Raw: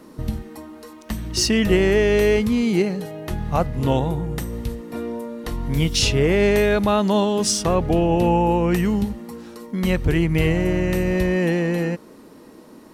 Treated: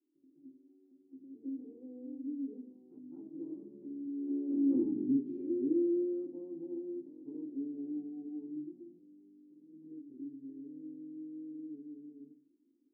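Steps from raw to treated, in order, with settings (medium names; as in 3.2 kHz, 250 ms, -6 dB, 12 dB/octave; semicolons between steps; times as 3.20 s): Doppler pass-by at 4.58 s, 60 m/s, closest 4.2 m; in parallel at 0 dB: compression, threshold -51 dBFS, peak gain reduction 25 dB; on the sum: Butterworth band-pass 300 Hz, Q 3.9; reverberation RT60 0.40 s, pre-delay 199 ms, DRR -10 dB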